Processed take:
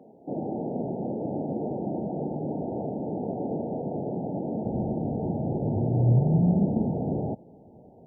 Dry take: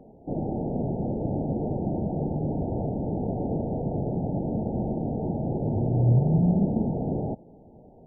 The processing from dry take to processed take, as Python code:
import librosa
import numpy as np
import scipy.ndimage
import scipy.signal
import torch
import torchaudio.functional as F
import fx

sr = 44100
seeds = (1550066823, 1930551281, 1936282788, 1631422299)

y = fx.highpass(x, sr, hz=fx.steps((0.0, 200.0), (4.65, 74.0)), slope=12)